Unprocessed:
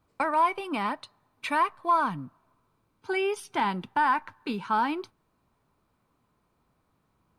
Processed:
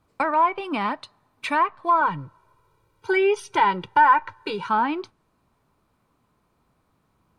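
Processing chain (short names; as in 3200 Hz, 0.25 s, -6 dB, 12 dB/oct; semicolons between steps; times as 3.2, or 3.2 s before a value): treble ducked by the level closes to 2300 Hz, closed at -20.5 dBFS; 2.01–4.69 comb 2.1 ms, depth 94%; gain +4 dB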